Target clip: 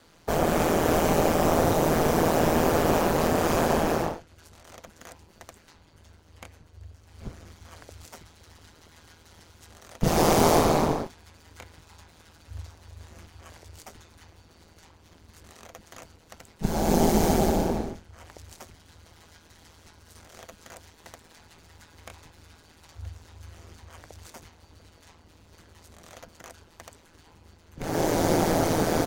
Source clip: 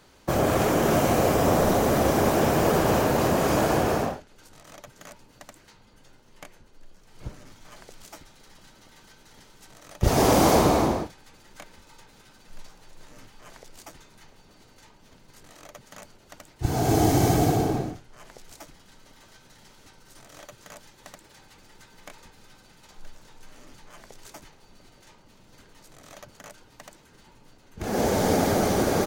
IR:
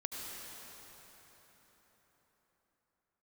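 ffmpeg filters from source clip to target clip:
-af "aeval=exprs='val(0)*sin(2*PI*81*n/s)':channel_layout=same,volume=2dB"

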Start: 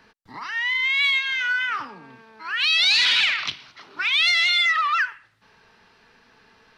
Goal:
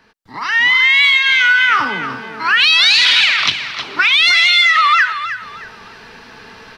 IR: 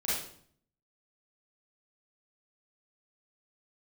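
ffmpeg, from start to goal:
-af "acompressor=threshold=-26dB:ratio=6,aecho=1:1:313|626|939:0.282|0.0789|0.0221,dynaudnorm=framelen=310:gausssize=3:maxgain=16dB,volume=1.5dB"

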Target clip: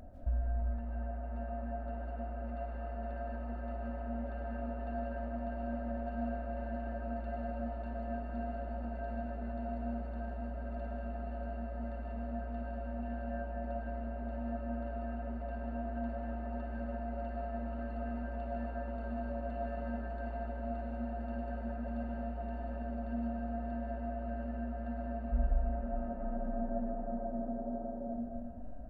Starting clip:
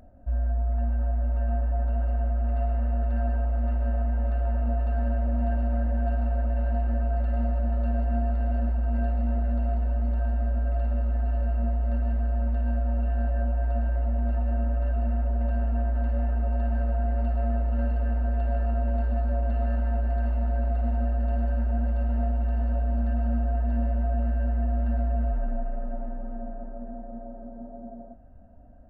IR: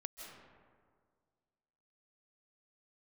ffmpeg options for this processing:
-filter_complex "[0:a]acompressor=threshold=-31dB:ratio=6[link_01];[1:a]atrim=start_sample=2205[link_02];[link_01][link_02]afir=irnorm=-1:irlink=0,volume=6dB"

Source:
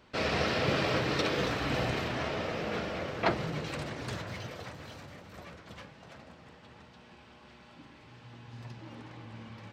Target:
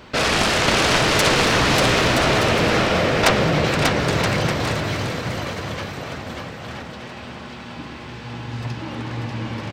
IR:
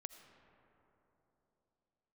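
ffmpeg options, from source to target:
-af "acontrast=87,aeval=exprs='0.447*(cos(1*acos(clip(val(0)/0.447,-1,1)))-cos(1*PI/2))+0.224*(cos(7*acos(clip(val(0)/0.447,-1,1)))-cos(7*PI/2))':channel_layout=same,aecho=1:1:590|973.5|1223|1385|1490:0.631|0.398|0.251|0.158|0.1,volume=1.5dB"

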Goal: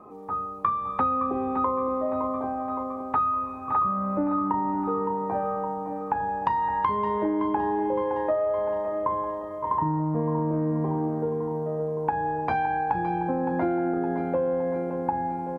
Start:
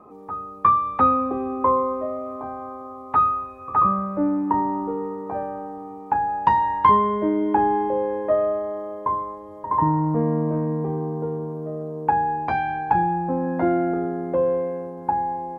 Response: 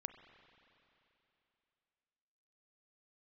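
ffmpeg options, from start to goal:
-filter_complex "[0:a]aecho=1:1:564|1128|1692|2256|2820|3384:0.282|0.149|0.0792|0.042|0.0222|0.0118,asplit=2[link_01][link_02];[1:a]atrim=start_sample=2205,asetrate=22491,aresample=44100,adelay=32[link_03];[link_02][link_03]afir=irnorm=-1:irlink=0,volume=-10dB[link_04];[link_01][link_04]amix=inputs=2:normalize=0,acompressor=threshold=-22dB:ratio=6"

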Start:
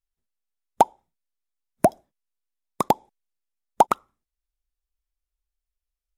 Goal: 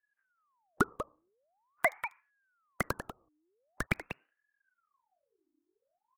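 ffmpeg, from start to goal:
ffmpeg -i in.wav -filter_complex "[0:a]asplit=2[link_01][link_02];[link_02]acompressor=threshold=-23dB:ratio=6,volume=-2dB[link_03];[link_01][link_03]amix=inputs=2:normalize=0,alimiter=limit=-12dB:level=0:latency=1:release=108,asettb=1/sr,asplit=3[link_04][link_05][link_06];[link_04]atrim=end=2.864[link_07];[link_05]atrim=start=2.86:end=3.87,asetpts=PTS-STARTPTS,afade=type=in:duration=0.004:curve=qsin,afade=type=out:start_time=1.006:duration=0.004:curve=qsin,acrossover=split=370|3000[link_08][link_09][link_10];[link_09]acompressor=threshold=-34dB:ratio=6[link_11];[link_08][link_11][link_10]amix=inputs=3:normalize=0[link_12];[link_06]atrim=start=3.866[link_13];[link_07][link_12]acrossfade=duration=0.004:curve1=hsin:curve2=qsin[link_14];[link_14][link_13]acrossfade=duration=0.004:curve1=qsin:curve2=hsin,acrossover=split=1300[link_15][link_16];[link_16]aeval=exprs='val(0)*gte(abs(val(0)),0.00355)':channel_layout=same[link_17];[link_15][link_17]amix=inputs=2:normalize=0,asplit=2[link_18][link_19];[link_19]adelay=192.4,volume=-10dB,highshelf=frequency=4000:gain=-4.33[link_20];[link_18][link_20]amix=inputs=2:normalize=0,aeval=exprs='val(0)*sin(2*PI*1000*n/s+1000*0.7/0.45*sin(2*PI*0.45*n/s))':channel_layout=same" out.wav

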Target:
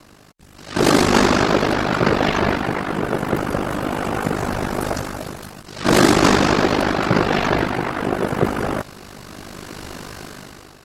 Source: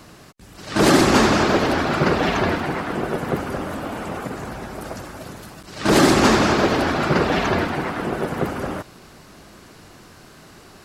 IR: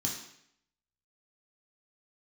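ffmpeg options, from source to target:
-af "dynaudnorm=framelen=330:gausssize=5:maxgain=16dB,aeval=exprs='val(0)*sin(2*PI*25*n/s)':channel_layout=same"

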